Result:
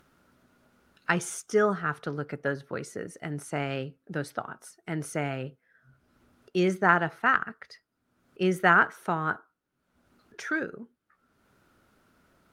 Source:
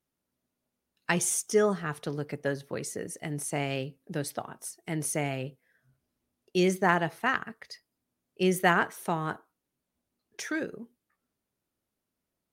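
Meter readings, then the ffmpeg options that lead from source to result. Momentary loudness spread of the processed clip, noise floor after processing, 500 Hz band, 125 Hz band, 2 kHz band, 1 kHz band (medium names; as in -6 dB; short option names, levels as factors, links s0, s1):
16 LU, -78 dBFS, 0.0 dB, 0.0 dB, +4.5 dB, +3.5 dB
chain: -af "acompressor=mode=upward:threshold=0.00501:ratio=2.5,lowpass=f=3000:p=1,equalizer=f=1400:w=3.5:g=11.5"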